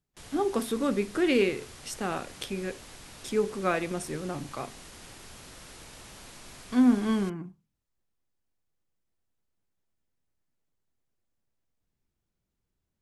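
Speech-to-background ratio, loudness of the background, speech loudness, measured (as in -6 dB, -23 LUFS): 17.5 dB, -46.5 LUFS, -29.0 LUFS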